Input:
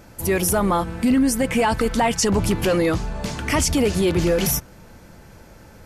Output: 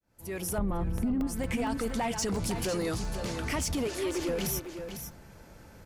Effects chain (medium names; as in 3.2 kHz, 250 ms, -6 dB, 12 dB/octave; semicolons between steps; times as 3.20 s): fade-in on the opening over 0.97 s; 2.28–3.20 s: high-order bell 6.6 kHz +8.5 dB; 3.87–4.29 s: Chebyshev high-pass 270 Hz, order 10; peak limiter -14 dBFS, peak gain reduction 7 dB; saturation -16.5 dBFS, distortion -19 dB; 0.58–1.27 s: tilt EQ -4 dB/octave; delay 501 ms -10 dB; compression 6:1, threshold -20 dBFS, peak gain reduction 9.5 dB; crackling interface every 0.23 s, samples 64, zero, from 0.98 s; trim -6.5 dB